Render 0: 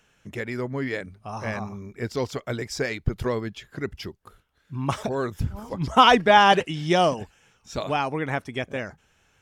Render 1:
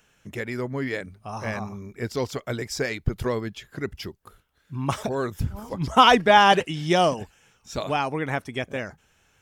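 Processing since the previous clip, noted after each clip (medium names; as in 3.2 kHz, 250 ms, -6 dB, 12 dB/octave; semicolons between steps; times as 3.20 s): treble shelf 10 kHz +7.5 dB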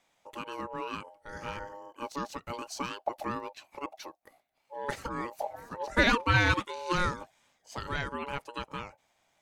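ring modulator 710 Hz; trim -6 dB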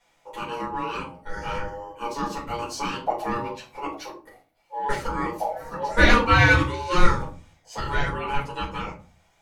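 simulated room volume 190 m³, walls furnished, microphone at 4.7 m; trim -2 dB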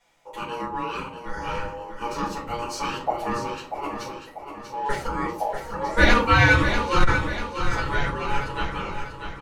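feedback delay 641 ms, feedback 49%, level -8 dB; transformer saturation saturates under 35 Hz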